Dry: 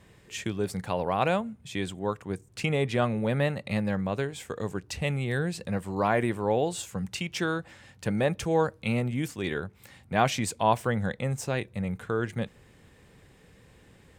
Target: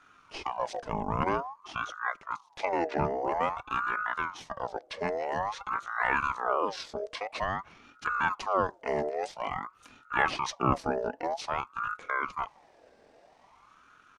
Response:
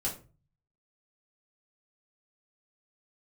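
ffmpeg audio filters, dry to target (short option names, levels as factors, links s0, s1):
-af "asetrate=26222,aresample=44100,atempo=1.68179,aeval=exprs='val(0)*sin(2*PI*940*n/s+940*0.45/0.5*sin(2*PI*0.5*n/s))':c=same"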